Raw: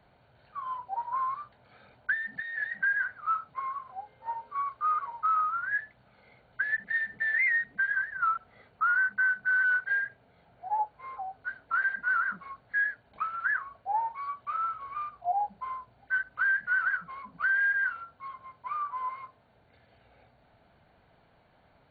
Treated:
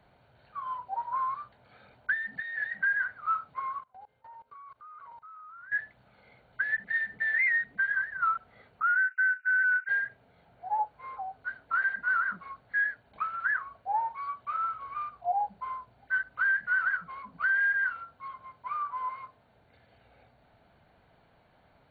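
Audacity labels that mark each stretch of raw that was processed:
3.800000	5.720000	level held to a coarse grid steps of 24 dB
8.820000	9.890000	brick-wall FIR band-pass 1.3–2.9 kHz

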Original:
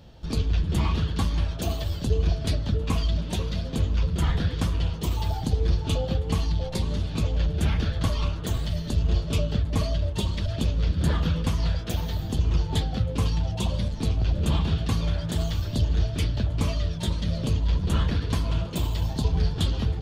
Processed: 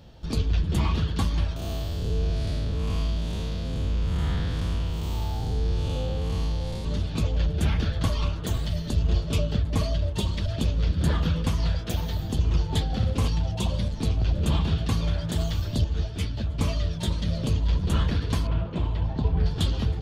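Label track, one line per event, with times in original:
1.560000	6.850000	spectral blur width 231 ms
12.840000	13.280000	flutter echo walls apart 10.1 m, dies away in 0.71 s
15.840000	16.590000	three-phase chorus
18.470000	19.460000	low-pass 2.2 kHz

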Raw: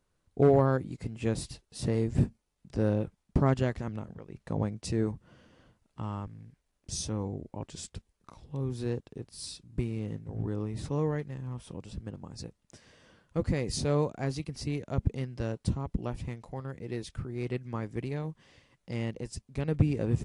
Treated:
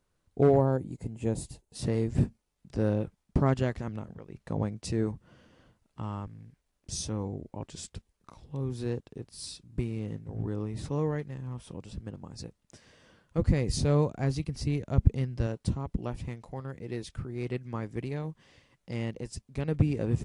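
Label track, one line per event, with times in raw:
0.580000	1.750000	time-frequency box 1–6.2 kHz -8 dB
13.380000	15.470000	bass shelf 140 Hz +9.5 dB

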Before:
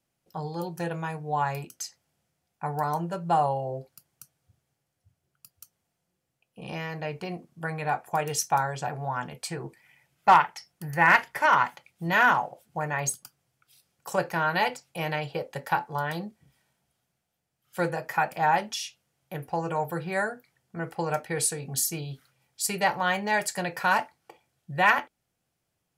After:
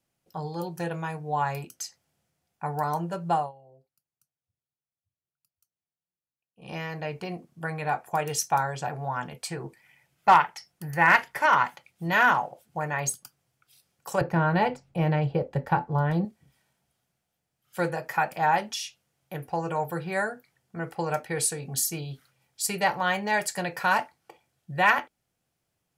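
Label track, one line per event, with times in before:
3.310000	6.760000	dip -22.5 dB, fades 0.21 s
14.210000	16.250000	tilt EQ -4 dB/octave

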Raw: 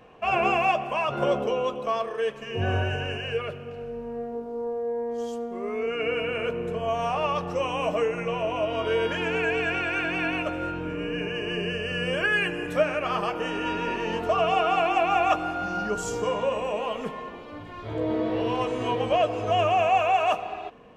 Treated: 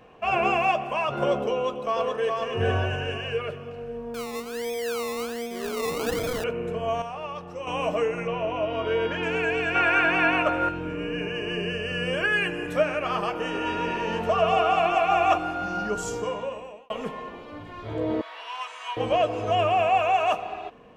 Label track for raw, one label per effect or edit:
1.540000	2.350000	echo throw 420 ms, feedback 40%, level -2.5 dB
4.140000	6.440000	decimation with a swept rate 22×, swing 60% 1.3 Hz
7.020000	7.670000	gain -8.5 dB
8.270000	9.230000	distance through air 110 m
9.750000	10.690000	peaking EQ 1.1 kHz +10 dB 2.1 oct
13.420000	15.380000	echo whose repeats swap between lows and highs 126 ms, split 1.2 kHz, feedback 58%, level -5.5 dB
16.040000	16.900000	fade out linear
18.210000	18.970000	high-pass 1 kHz 24 dB/octave
19.550000	20.030000	band-stop 6.3 kHz, Q 5.7

